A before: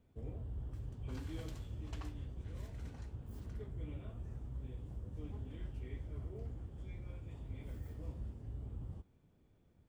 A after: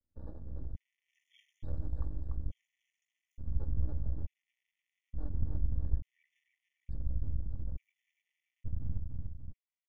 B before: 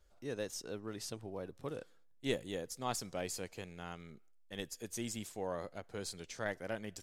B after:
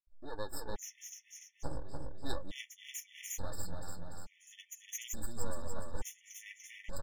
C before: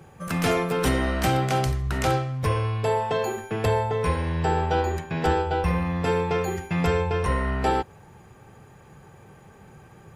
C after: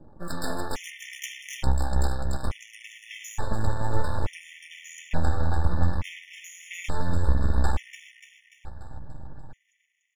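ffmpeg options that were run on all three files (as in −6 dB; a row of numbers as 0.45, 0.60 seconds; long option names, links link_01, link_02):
-filter_complex "[0:a]acrossover=split=400[link_01][link_02];[link_01]aeval=exprs='val(0)*(1-0.5/2+0.5/2*cos(2*PI*1.1*n/s))':channel_layout=same[link_03];[link_02]aeval=exprs='val(0)*(1-0.5/2-0.5/2*cos(2*PI*1.1*n/s))':channel_layout=same[link_04];[link_03][link_04]amix=inputs=2:normalize=0,acompressor=threshold=-27dB:ratio=6,aeval=exprs='0.141*(cos(1*acos(clip(val(0)/0.141,-1,1)))-cos(1*PI/2))+0.00562*(cos(8*acos(clip(val(0)/0.141,-1,1)))-cos(8*PI/2))':channel_layout=same,afftdn=noise_reduction=24:noise_floor=-50,superequalizer=10b=0.501:15b=2,flanger=delay=2.9:depth=9.7:regen=56:speed=0.41:shape=triangular,acontrast=50,asplit=2[link_05][link_06];[link_06]aecho=0:1:292|584|876|1168|1460|1752|2044:0.631|0.322|0.164|0.0837|0.0427|0.0218|0.0111[link_07];[link_05][link_07]amix=inputs=2:normalize=0,aeval=exprs='max(val(0),0)':channel_layout=same,asubboost=boost=5.5:cutoff=130,aecho=1:1:3.5:0.38,afftfilt=real='re*gt(sin(2*PI*0.57*pts/sr)*(1-2*mod(floor(b*sr/1024/1800),2)),0)':imag='im*gt(sin(2*PI*0.57*pts/sr)*(1-2*mod(floor(b*sr/1024/1800),2)),0)':win_size=1024:overlap=0.75,volume=4dB"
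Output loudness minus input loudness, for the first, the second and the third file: +6.0, −3.0, −5.5 LU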